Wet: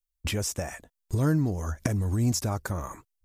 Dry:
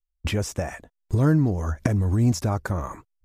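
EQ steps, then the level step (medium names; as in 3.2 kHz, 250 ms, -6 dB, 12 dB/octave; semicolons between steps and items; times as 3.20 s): treble shelf 4.3 kHz +11.5 dB; -5.0 dB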